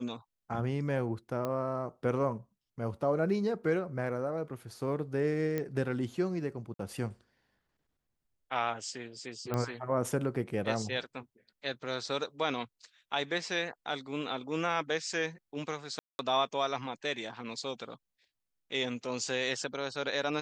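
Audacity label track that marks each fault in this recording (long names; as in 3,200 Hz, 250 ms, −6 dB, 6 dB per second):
1.450000	1.450000	click −21 dBFS
5.580000	5.580000	click −20 dBFS
6.740000	6.790000	drop-out 53 ms
9.540000	9.540000	click −19 dBFS
15.990000	16.190000	drop-out 201 ms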